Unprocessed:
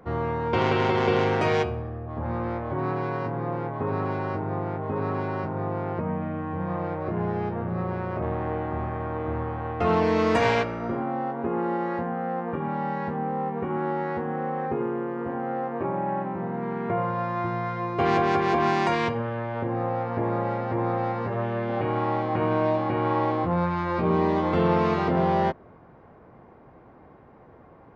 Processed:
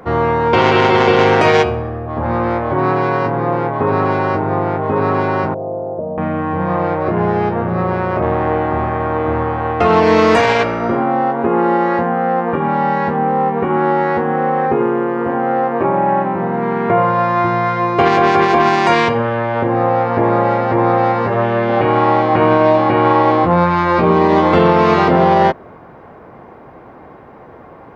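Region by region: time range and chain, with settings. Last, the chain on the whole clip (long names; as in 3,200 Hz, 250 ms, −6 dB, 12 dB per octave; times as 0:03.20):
0:05.54–0:06.18: log-companded quantiser 8 bits + transistor ladder low-pass 660 Hz, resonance 70%
whole clip: low-shelf EQ 240 Hz −7 dB; boost into a limiter +15.5 dB; level −1 dB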